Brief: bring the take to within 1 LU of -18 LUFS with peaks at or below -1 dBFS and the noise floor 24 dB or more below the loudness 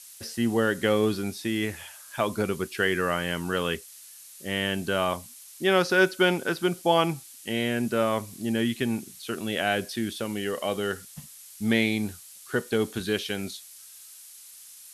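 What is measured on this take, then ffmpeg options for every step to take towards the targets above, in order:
noise floor -48 dBFS; noise floor target -51 dBFS; loudness -27.0 LUFS; peak -8.5 dBFS; loudness target -18.0 LUFS
-> -af "afftdn=nr=6:nf=-48"
-af "volume=9dB,alimiter=limit=-1dB:level=0:latency=1"

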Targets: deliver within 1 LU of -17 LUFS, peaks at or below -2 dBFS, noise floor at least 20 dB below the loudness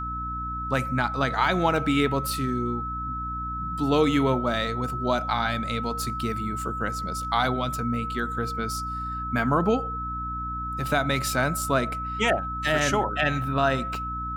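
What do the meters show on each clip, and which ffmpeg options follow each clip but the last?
hum 60 Hz; harmonics up to 300 Hz; hum level -33 dBFS; steady tone 1300 Hz; tone level -30 dBFS; loudness -26.0 LUFS; peak -9.5 dBFS; loudness target -17.0 LUFS
-> -af "bandreject=f=60:t=h:w=6,bandreject=f=120:t=h:w=6,bandreject=f=180:t=h:w=6,bandreject=f=240:t=h:w=6,bandreject=f=300:t=h:w=6"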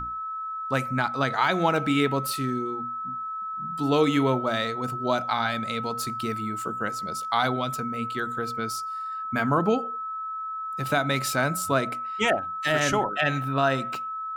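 hum none; steady tone 1300 Hz; tone level -30 dBFS
-> -af "bandreject=f=1.3k:w=30"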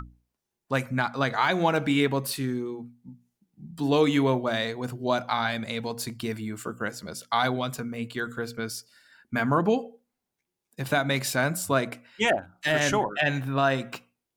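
steady tone none; loudness -27.0 LUFS; peak -10.5 dBFS; loudness target -17.0 LUFS
-> -af "volume=10dB,alimiter=limit=-2dB:level=0:latency=1"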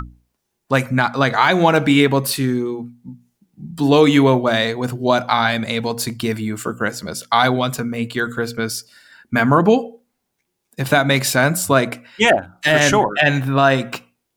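loudness -17.0 LUFS; peak -2.0 dBFS; noise floor -75 dBFS

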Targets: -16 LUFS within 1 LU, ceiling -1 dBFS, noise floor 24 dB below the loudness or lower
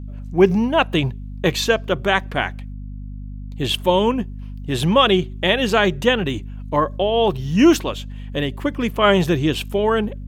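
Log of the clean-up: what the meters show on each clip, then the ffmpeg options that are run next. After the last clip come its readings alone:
hum 50 Hz; harmonics up to 250 Hz; hum level -29 dBFS; loudness -19.0 LUFS; peak -2.0 dBFS; loudness target -16.0 LUFS
-> -af "bandreject=f=50:t=h:w=6,bandreject=f=100:t=h:w=6,bandreject=f=150:t=h:w=6,bandreject=f=200:t=h:w=6,bandreject=f=250:t=h:w=6"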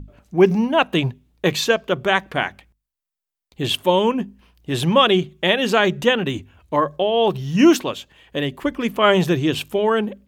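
hum none; loudness -19.0 LUFS; peak -2.0 dBFS; loudness target -16.0 LUFS
-> -af "volume=3dB,alimiter=limit=-1dB:level=0:latency=1"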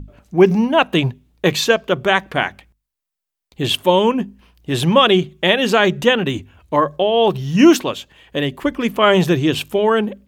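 loudness -16.5 LUFS; peak -1.0 dBFS; noise floor -83 dBFS

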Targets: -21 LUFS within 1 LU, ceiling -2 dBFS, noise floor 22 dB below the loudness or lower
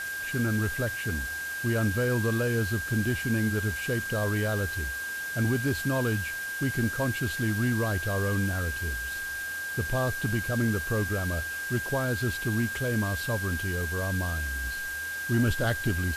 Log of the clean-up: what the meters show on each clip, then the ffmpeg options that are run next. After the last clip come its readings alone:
steady tone 1600 Hz; tone level -32 dBFS; noise floor -34 dBFS; noise floor target -51 dBFS; loudness -28.5 LUFS; peak -15.5 dBFS; loudness target -21.0 LUFS
-> -af "bandreject=f=1.6k:w=30"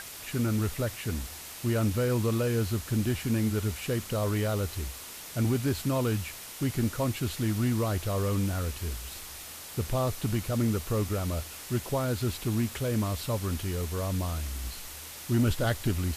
steady tone none; noise floor -43 dBFS; noise floor target -53 dBFS
-> -af "afftdn=nr=10:nf=-43"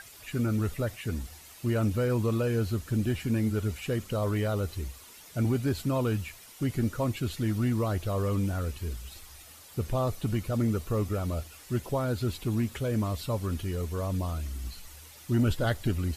noise floor -51 dBFS; noise floor target -53 dBFS
-> -af "afftdn=nr=6:nf=-51"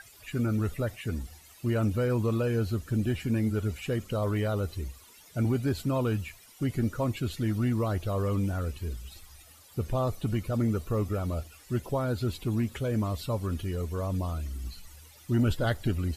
noise floor -54 dBFS; loudness -30.5 LUFS; peak -16.5 dBFS; loudness target -21.0 LUFS
-> -af "volume=9.5dB"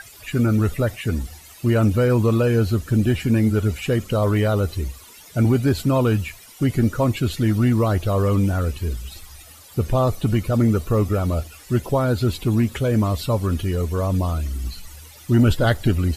loudness -21.0 LUFS; peak -7.0 dBFS; noise floor -45 dBFS

